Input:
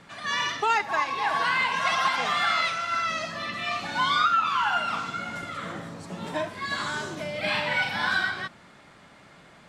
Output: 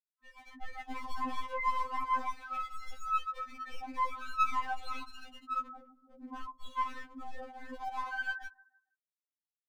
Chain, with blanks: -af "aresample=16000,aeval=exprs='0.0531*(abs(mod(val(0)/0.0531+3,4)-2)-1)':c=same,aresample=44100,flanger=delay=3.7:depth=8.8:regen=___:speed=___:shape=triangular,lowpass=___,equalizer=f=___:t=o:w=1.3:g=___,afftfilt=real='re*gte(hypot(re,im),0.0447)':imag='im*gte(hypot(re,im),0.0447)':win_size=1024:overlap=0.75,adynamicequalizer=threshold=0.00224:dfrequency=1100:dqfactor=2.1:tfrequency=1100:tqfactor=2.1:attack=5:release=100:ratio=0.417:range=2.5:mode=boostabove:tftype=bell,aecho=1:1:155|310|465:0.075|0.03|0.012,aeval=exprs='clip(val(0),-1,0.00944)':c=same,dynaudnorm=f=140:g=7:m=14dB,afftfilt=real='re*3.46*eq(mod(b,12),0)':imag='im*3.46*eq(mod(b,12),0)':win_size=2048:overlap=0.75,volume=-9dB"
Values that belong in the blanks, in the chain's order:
42, 0.36, 1.4k, 100, -3